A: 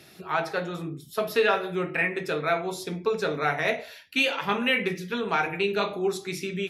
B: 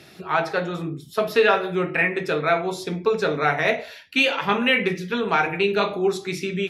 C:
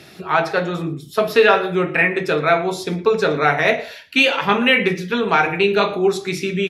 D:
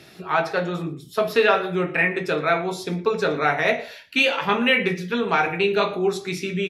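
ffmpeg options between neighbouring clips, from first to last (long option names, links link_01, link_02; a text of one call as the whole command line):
ffmpeg -i in.wav -af "highshelf=frequency=9000:gain=-10.5,volume=5dB" out.wav
ffmpeg -i in.wav -af "aecho=1:1:115:0.0891,volume=4.5dB" out.wav
ffmpeg -i in.wav -filter_complex "[0:a]asplit=2[link_01][link_02];[link_02]adelay=17,volume=-12dB[link_03];[link_01][link_03]amix=inputs=2:normalize=0,volume=-4.5dB" out.wav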